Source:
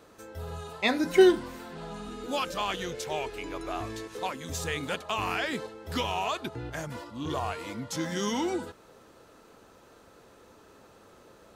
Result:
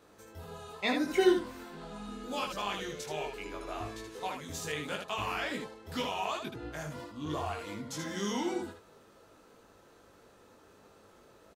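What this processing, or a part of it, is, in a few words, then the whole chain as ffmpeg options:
slapback doubling: -filter_complex "[0:a]asplit=3[s0][s1][s2];[s1]adelay=20,volume=0.708[s3];[s2]adelay=78,volume=0.562[s4];[s0][s3][s4]amix=inputs=3:normalize=0,volume=0.473"

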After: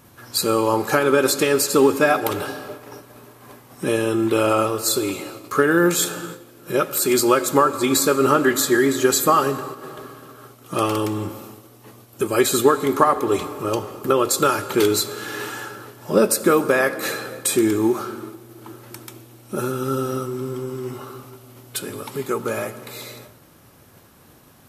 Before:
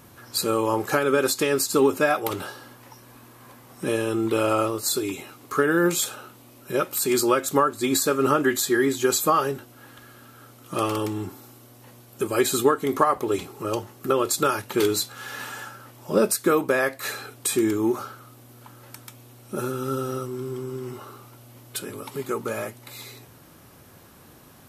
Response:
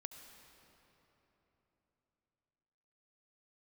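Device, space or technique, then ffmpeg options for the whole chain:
keyed gated reverb: -filter_complex "[0:a]asplit=3[s0][s1][s2];[1:a]atrim=start_sample=2205[s3];[s1][s3]afir=irnorm=-1:irlink=0[s4];[s2]apad=whole_len=1088807[s5];[s4][s5]sidechaingate=range=0.0224:threshold=0.00447:ratio=16:detection=peak,volume=1.58[s6];[s0][s6]amix=inputs=2:normalize=0,volume=0.841"

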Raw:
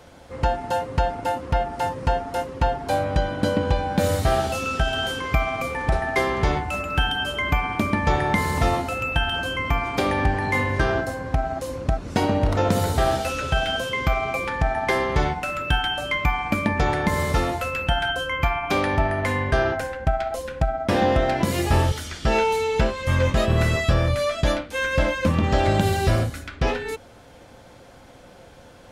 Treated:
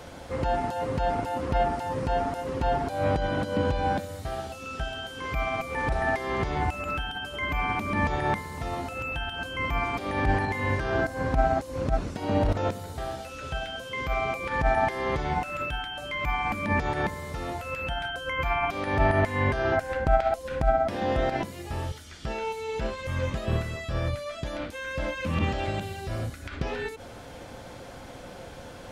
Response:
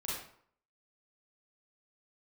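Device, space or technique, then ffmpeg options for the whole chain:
de-esser from a sidechain: -filter_complex "[0:a]asplit=2[s0][s1];[s1]highpass=f=4500:w=0.5412,highpass=f=4500:w=1.3066,apad=whole_len=1275125[s2];[s0][s2]sidechaincompress=threshold=0.00158:ratio=8:attack=3.7:release=52,asettb=1/sr,asplit=3[s3][s4][s5];[s3]atrim=end=25.174[s6];[s4]atrim=start=25.17:end=26,asetpts=PTS-STARTPTS,afade=t=in:d=0.004:c=qsin,afade=t=out:st=0.826:d=0.004:c=qsin,equalizer=f=2700:t=o:w=0.68:g=5.5[s7];[s5]atrim=start=25.996[s8];[s6][s7]acrossfade=d=0.004:c1=hsin:c2=qsin[s9];[s9][s8]acrossfade=d=0.004:c1=qsin:c2=hsin,volume=1.68"

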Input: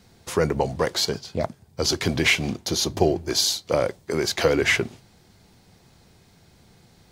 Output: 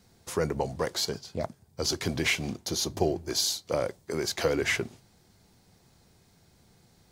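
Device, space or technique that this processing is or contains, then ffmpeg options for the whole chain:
exciter from parts: -filter_complex "[0:a]asplit=2[s0][s1];[s1]highpass=f=2900:p=1,asoftclip=type=tanh:threshold=0.126,highpass=3100,volume=0.531[s2];[s0][s2]amix=inputs=2:normalize=0,volume=0.473"

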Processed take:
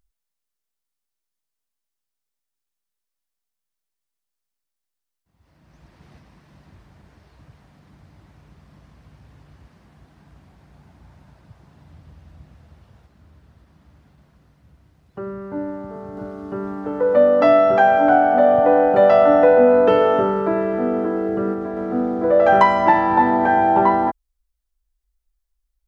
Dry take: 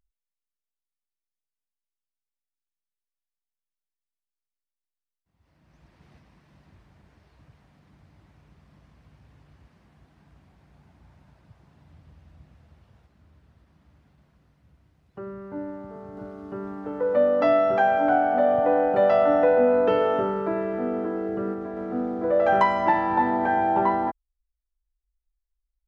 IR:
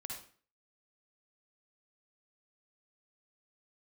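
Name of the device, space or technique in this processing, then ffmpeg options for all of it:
exciter from parts: -filter_complex "[0:a]asplit=2[s0][s1];[s1]highpass=f=2200:w=0.5412,highpass=f=2200:w=1.3066,asoftclip=type=tanh:threshold=0.0112,volume=0.211[s2];[s0][s2]amix=inputs=2:normalize=0,volume=2.11"

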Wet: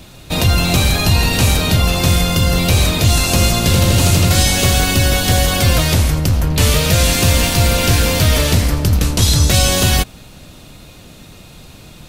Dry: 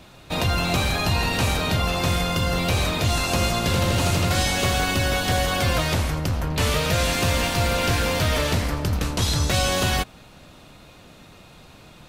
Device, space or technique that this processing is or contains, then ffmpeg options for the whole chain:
smiley-face EQ: -af "lowshelf=f=110:g=4,equalizer=f=1100:t=o:w=2.2:g=-5.5,highshelf=f=6600:g=6.5,volume=2.51"

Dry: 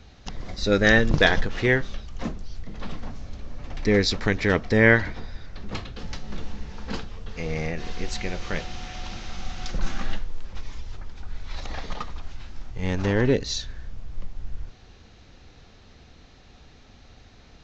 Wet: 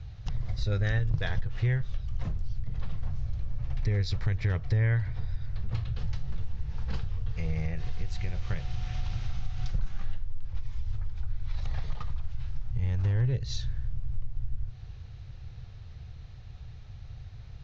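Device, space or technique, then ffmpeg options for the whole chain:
jukebox: -af "lowpass=6100,lowshelf=f=170:t=q:w=3:g=12,acompressor=threshold=0.112:ratio=4,volume=0.501"

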